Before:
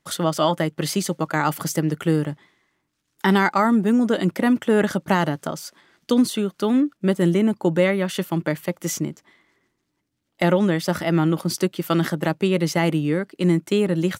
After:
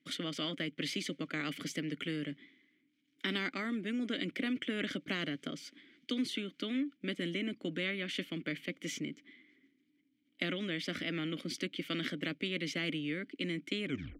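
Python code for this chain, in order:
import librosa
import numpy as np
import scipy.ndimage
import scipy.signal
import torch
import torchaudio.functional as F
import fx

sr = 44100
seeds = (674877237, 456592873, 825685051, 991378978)

y = fx.tape_stop_end(x, sr, length_s=0.35)
y = fx.vowel_filter(y, sr, vowel='i')
y = fx.spectral_comp(y, sr, ratio=2.0)
y = F.gain(torch.from_numpy(y), -6.5).numpy()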